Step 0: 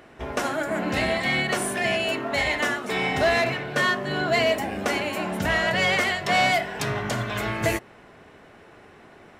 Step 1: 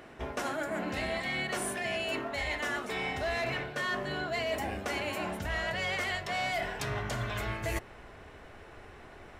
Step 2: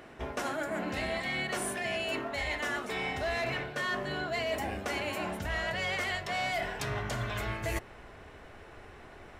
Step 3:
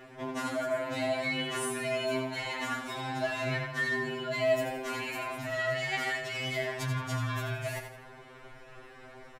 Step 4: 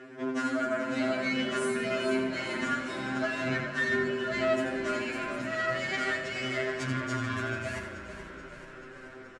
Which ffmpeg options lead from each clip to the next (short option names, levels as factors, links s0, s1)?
-af "asubboost=boost=6:cutoff=69,areverse,acompressor=threshold=0.0316:ratio=6,areverse,volume=0.891"
-af anull
-af "aecho=1:1:85|170|255|340:0.422|0.152|0.0547|0.0197,afftfilt=real='re*2.45*eq(mod(b,6),0)':imag='im*2.45*eq(mod(b,6),0)':win_size=2048:overlap=0.75,volume=1.26"
-filter_complex "[0:a]aeval=exprs='(tanh(14.1*val(0)+0.7)-tanh(0.7))/14.1':c=same,highpass=120,equalizer=f=280:t=q:w=4:g=9,equalizer=f=420:t=q:w=4:g=8,equalizer=f=850:t=q:w=4:g=-7,equalizer=f=1500:t=q:w=4:g=8,equalizer=f=3700:t=q:w=4:g=-3,lowpass=f=8500:w=0.5412,lowpass=f=8500:w=1.3066,asplit=2[s0][s1];[s1]asplit=7[s2][s3][s4][s5][s6][s7][s8];[s2]adelay=432,afreqshift=-30,volume=0.266[s9];[s3]adelay=864,afreqshift=-60,volume=0.162[s10];[s4]adelay=1296,afreqshift=-90,volume=0.0989[s11];[s5]adelay=1728,afreqshift=-120,volume=0.0603[s12];[s6]adelay=2160,afreqshift=-150,volume=0.0367[s13];[s7]adelay=2592,afreqshift=-180,volume=0.0224[s14];[s8]adelay=3024,afreqshift=-210,volume=0.0136[s15];[s9][s10][s11][s12][s13][s14][s15]amix=inputs=7:normalize=0[s16];[s0][s16]amix=inputs=2:normalize=0,volume=1.41"